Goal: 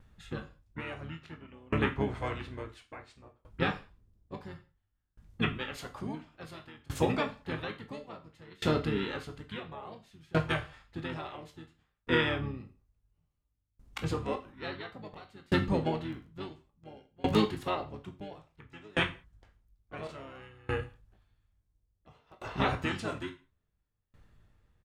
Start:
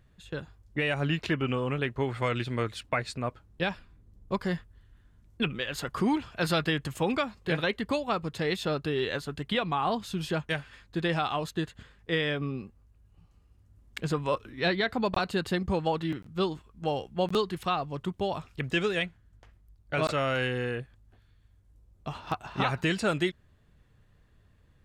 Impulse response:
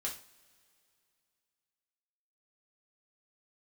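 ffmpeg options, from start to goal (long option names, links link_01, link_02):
-filter_complex "[0:a]asplit=3[link_01][link_02][link_03];[link_02]asetrate=22050,aresample=44100,atempo=2,volume=-5dB[link_04];[link_03]asetrate=33038,aresample=44100,atempo=1.33484,volume=-4dB[link_05];[link_01][link_04][link_05]amix=inputs=3:normalize=0,asplit=2[link_06][link_07];[1:a]atrim=start_sample=2205,afade=type=out:start_time=0.24:duration=0.01,atrim=end_sample=11025,adelay=19[link_08];[link_07][link_08]afir=irnorm=-1:irlink=0,volume=-6dB[link_09];[link_06][link_09]amix=inputs=2:normalize=0,aeval=exprs='val(0)*pow(10,-29*if(lt(mod(0.58*n/s,1),2*abs(0.58)/1000),1-mod(0.58*n/s,1)/(2*abs(0.58)/1000),(mod(0.58*n/s,1)-2*abs(0.58)/1000)/(1-2*abs(0.58)/1000))/20)':channel_layout=same"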